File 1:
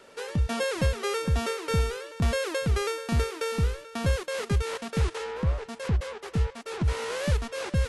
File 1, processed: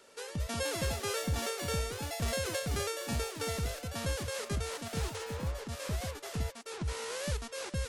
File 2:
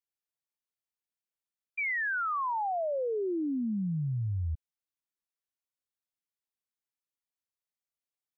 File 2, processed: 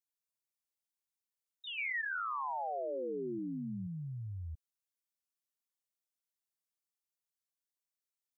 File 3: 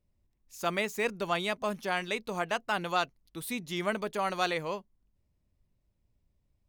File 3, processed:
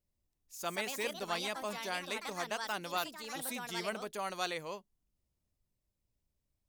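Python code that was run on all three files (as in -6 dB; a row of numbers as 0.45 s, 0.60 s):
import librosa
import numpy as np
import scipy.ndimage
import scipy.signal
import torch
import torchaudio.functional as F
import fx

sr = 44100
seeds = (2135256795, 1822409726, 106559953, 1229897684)

y = fx.echo_pitch(x, sr, ms=260, semitones=4, count=2, db_per_echo=-6.0)
y = fx.bass_treble(y, sr, bass_db=-3, treble_db=8)
y = y * 10.0 ** (-7.5 / 20.0)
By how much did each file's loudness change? -7.0 LU, -7.0 LU, -5.5 LU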